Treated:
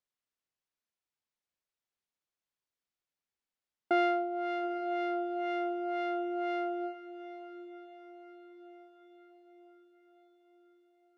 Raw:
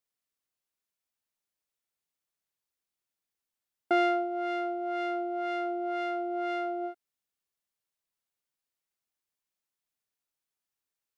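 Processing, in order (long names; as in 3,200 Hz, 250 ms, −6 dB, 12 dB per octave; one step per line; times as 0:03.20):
high-frequency loss of the air 73 metres
on a send: feedback delay with all-pass diffusion 859 ms, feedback 54%, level −14 dB
on the sum: level −2 dB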